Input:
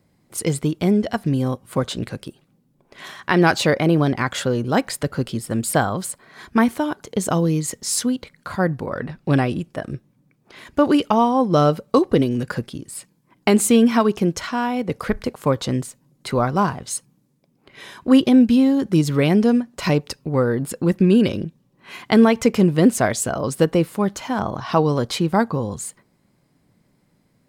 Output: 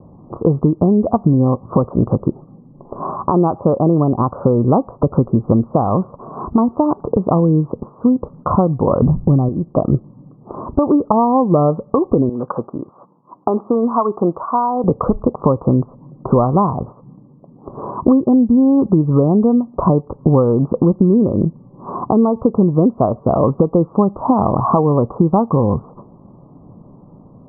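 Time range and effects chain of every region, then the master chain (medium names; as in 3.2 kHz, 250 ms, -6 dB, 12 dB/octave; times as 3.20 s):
9.01–9.49 s: RIAA curve playback + hum notches 60/120/180 Hz
12.29–14.84 s: de-esser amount 70% + frequency weighting ITU-R 468
whole clip: compression 16:1, threshold -29 dBFS; steep low-pass 1.2 kHz 96 dB/octave; loudness maximiser +21 dB; trim -1 dB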